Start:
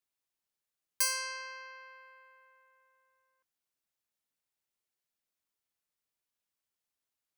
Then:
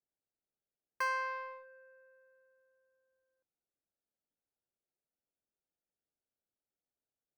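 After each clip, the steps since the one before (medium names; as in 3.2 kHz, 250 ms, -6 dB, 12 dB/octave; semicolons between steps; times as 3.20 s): local Wiener filter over 41 samples; FFT filter 140 Hz 0 dB, 1.2 kHz +9 dB, 8.5 kHz -27 dB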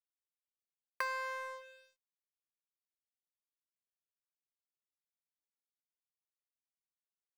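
compression 3:1, threshold -47 dBFS, peak gain reduction 13 dB; crossover distortion -56 dBFS; trim +10.5 dB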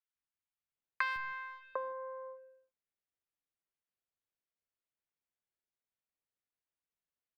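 in parallel at -5 dB: bit crusher 5-bit; on the sum: distance through air 400 m; three bands offset in time highs, lows, mids 150/750 ms, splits 230/950 Hz; trim +5 dB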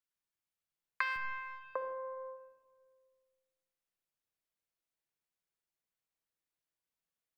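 simulated room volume 1600 m³, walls mixed, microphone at 0.67 m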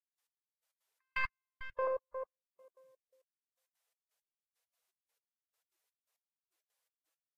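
on a send: feedback delay 117 ms, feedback 59%, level -10 dB; on the sum: trance gate "..x....x.xx" 168 bpm -60 dB; trim +7 dB; Vorbis 48 kbps 44.1 kHz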